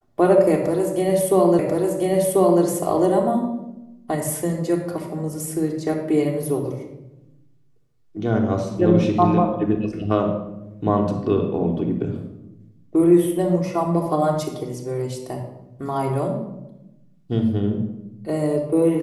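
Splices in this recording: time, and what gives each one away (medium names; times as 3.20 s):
1.59 s: repeat of the last 1.04 s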